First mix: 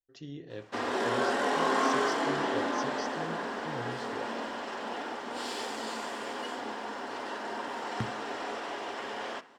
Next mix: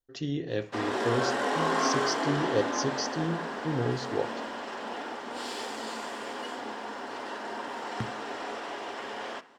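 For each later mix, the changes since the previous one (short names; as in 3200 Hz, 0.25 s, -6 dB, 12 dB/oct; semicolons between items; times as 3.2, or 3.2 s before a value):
speech +11.0 dB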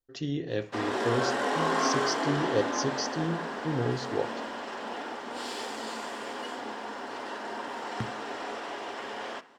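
none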